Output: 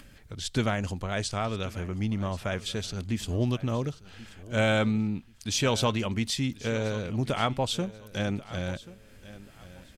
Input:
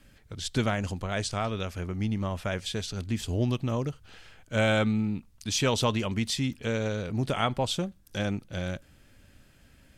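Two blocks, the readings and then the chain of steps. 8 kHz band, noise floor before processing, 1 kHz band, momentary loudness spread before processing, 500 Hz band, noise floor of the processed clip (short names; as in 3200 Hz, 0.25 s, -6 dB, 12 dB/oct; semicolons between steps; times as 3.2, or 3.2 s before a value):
0.0 dB, -59 dBFS, 0.0 dB, 9 LU, 0.0 dB, -53 dBFS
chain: upward compressor, threshold -45 dBFS; on a send: feedback echo 1.084 s, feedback 26%, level -18 dB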